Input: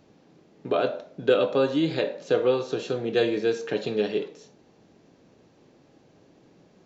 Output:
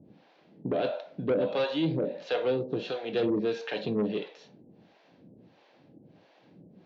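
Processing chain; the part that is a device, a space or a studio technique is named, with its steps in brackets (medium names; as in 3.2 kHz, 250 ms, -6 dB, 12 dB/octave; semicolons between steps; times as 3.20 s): guitar amplifier with harmonic tremolo (harmonic tremolo 1.5 Hz, depth 100%, crossover 530 Hz; saturation -24.5 dBFS, distortion -12 dB; cabinet simulation 88–4300 Hz, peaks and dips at 190 Hz +3 dB, 410 Hz -5 dB, 1.2 kHz -5 dB); dynamic bell 1.5 kHz, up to -4 dB, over -51 dBFS, Q 1.5; trim +5.5 dB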